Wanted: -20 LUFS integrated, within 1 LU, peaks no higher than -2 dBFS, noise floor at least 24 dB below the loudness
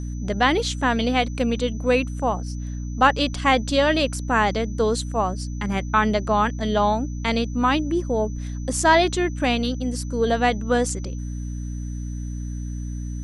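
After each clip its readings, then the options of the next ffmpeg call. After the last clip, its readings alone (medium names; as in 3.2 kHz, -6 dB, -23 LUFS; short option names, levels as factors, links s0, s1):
hum 60 Hz; highest harmonic 300 Hz; hum level -27 dBFS; steady tone 6 kHz; tone level -47 dBFS; loudness -22.5 LUFS; peak level -4.5 dBFS; loudness target -20.0 LUFS
-> -af "bandreject=f=60:t=h:w=4,bandreject=f=120:t=h:w=4,bandreject=f=180:t=h:w=4,bandreject=f=240:t=h:w=4,bandreject=f=300:t=h:w=4"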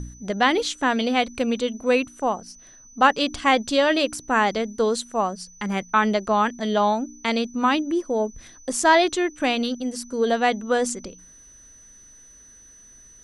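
hum not found; steady tone 6 kHz; tone level -47 dBFS
-> -af "bandreject=f=6000:w=30"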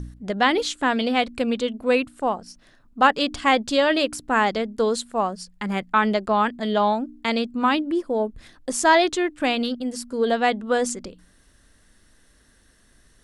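steady tone not found; loudness -22.5 LUFS; peak level -5.0 dBFS; loudness target -20.0 LUFS
-> -af "volume=1.33"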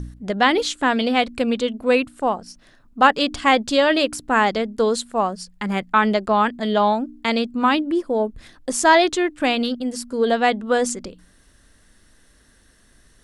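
loudness -20.0 LUFS; peak level -2.5 dBFS; noise floor -55 dBFS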